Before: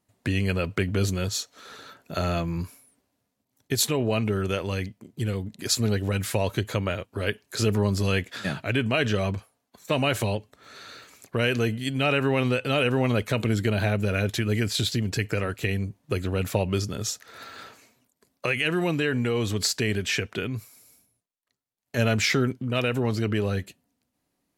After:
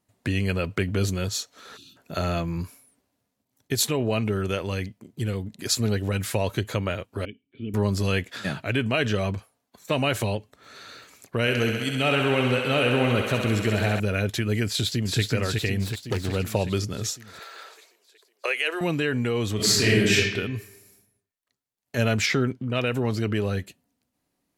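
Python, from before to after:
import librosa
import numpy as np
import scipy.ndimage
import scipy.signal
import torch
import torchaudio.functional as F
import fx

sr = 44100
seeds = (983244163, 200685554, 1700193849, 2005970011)

y = fx.spec_box(x, sr, start_s=1.77, length_s=0.2, low_hz=380.0, high_hz=2400.0, gain_db=-28)
y = fx.formant_cascade(y, sr, vowel='i', at=(7.25, 7.74))
y = fx.echo_thinned(y, sr, ms=66, feedback_pct=85, hz=300.0, wet_db=-5.5, at=(11.4, 14.0))
y = fx.echo_throw(y, sr, start_s=14.68, length_s=0.53, ms=370, feedback_pct=65, wet_db=-3.5)
y = fx.self_delay(y, sr, depth_ms=0.26, at=(15.78, 16.35))
y = fx.steep_highpass(y, sr, hz=390.0, slope=36, at=(17.39, 18.81))
y = fx.reverb_throw(y, sr, start_s=19.55, length_s=0.59, rt60_s=1.1, drr_db=-7.0)
y = fx.high_shelf(y, sr, hz=8500.0, db=-11.0, at=(22.26, 22.87))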